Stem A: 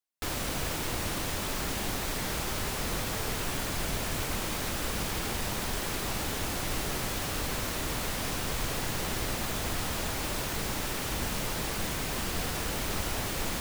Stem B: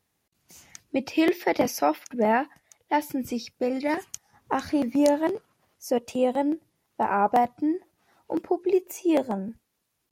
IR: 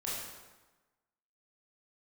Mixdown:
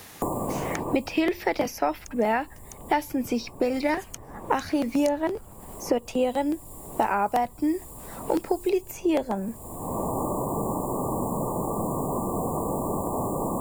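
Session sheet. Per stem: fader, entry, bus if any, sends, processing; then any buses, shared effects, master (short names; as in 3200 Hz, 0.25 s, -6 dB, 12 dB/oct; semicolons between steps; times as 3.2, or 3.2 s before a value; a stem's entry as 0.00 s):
-5.5 dB, 0.00 s, no send, FFT band-reject 1200–6900 Hz; auto duck -14 dB, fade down 1.55 s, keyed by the second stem
+1.5 dB, 0.00 s, no send, low shelf 320 Hz -6 dB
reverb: off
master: three-band squash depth 100%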